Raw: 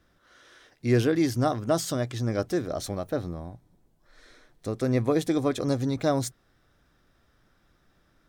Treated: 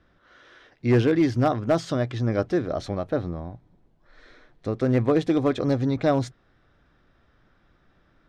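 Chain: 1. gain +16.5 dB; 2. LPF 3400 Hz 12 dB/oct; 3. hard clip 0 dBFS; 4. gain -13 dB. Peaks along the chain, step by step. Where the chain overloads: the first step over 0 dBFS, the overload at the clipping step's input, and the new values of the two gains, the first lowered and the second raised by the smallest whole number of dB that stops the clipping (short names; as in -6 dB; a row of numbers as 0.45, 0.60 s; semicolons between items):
+4.5, +4.5, 0.0, -13.0 dBFS; step 1, 4.5 dB; step 1 +11.5 dB, step 4 -8 dB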